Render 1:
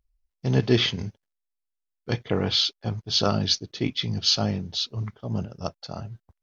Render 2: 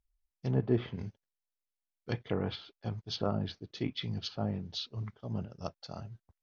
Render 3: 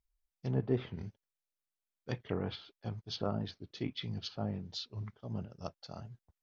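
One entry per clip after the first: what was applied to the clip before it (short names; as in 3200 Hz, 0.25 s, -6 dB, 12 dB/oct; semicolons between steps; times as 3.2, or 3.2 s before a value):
treble ducked by the level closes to 1100 Hz, closed at -18.5 dBFS; gain -8 dB
record warp 45 rpm, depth 100 cents; gain -3 dB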